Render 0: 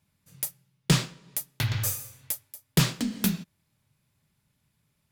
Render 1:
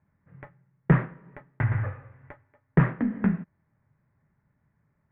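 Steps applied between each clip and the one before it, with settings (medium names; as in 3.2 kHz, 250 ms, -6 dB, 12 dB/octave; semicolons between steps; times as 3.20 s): elliptic low-pass 1.9 kHz, stop band 60 dB; trim +4 dB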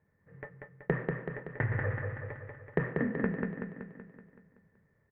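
small resonant body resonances 460/1800 Hz, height 14 dB, ringing for 30 ms; compression 6:1, threshold -23 dBFS, peak gain reduction 12 dB; on a send: feedback delay 189 ms, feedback 56%, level -4 dB; on the sum: trim -4 dB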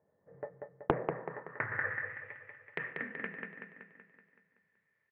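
band-pass sweep 640 Hz -> 2.5 kHz, 0.96–2.28 s; bass shelf 500 Hz +7.5 dB; loudspeaker Doppler distortion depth 0.57 ms; trim +5.5 dB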